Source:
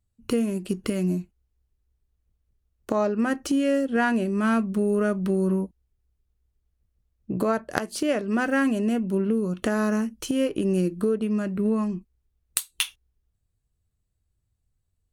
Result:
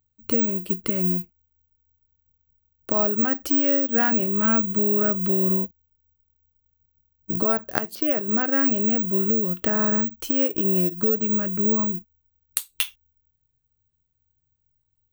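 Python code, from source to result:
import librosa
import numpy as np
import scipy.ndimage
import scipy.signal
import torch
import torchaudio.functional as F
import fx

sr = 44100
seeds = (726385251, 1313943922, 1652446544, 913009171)

y = fx.air_absorb(x, sr, metres=170.0, at=(7.95, 8.64))
y = (np.kron(scipy.signal.resample_poly(y, 1, 2), np.eye(2)[0]) * 2)[:len(y)]
y = y * librosa.db_to_amplitude(-1.0)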